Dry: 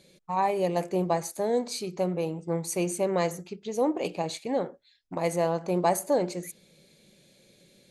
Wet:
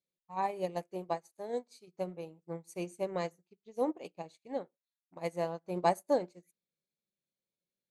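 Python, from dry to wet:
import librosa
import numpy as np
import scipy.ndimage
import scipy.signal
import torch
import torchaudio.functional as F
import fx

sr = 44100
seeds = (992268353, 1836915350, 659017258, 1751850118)

y = fx.low_shelf(x, sr, hz=160.0, db=-8.5, at=(0.83, 1.88))
y = fx.upward_expand(y, sr, threshold_db=-44.0, expansion=2.5)
y = y * 10.0 ** (-2.0 / 20.0)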